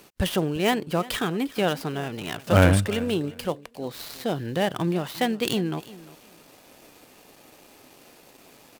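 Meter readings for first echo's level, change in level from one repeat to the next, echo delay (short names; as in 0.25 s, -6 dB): -19.0 dB, -14.5 dB, 0.352 s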